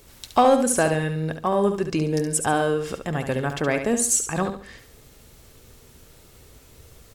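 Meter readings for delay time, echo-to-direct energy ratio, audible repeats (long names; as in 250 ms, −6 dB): 70 ms, −7.5 dB, 3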